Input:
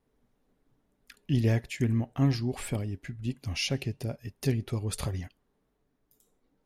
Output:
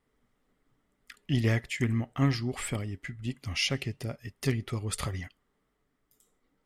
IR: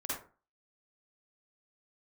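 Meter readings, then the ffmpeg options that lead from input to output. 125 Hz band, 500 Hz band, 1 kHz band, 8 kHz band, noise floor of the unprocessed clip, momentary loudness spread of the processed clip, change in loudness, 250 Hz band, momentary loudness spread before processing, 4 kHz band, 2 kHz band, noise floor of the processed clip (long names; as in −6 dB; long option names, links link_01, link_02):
−1.5 dB, −1.0 dB, +2.5 dB, +1.5 dB, −75 dBFS, 11 LU, −0.5 dB, −1.5 dB, 10 LU, +2.5 dB, +4.5 dB, −77 dBFS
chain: -af "aeval=exprs='0.2*(cos(1*acos(clip(val(0)/0.2,-1,1)))-cos(1*PI/2))+0.0141*(cos(3*acos(clip(val(0)/0.2,-1,1)))-cos(3*PI/2))':channel_layout=same,equalizer=frequency=1250:width_type=o:width=0.33:gain=9,equalizer=frequency=2000:width_type=o:width=0.33:gain=10,equalizer=frequency=3150:width_type=o:width=0.33:gain=6,equalizer=frequency=5000:width_type=o:width=0.33:gain=3,equalizer=frequency=8000:width_type=o:width=0.33:gain=7"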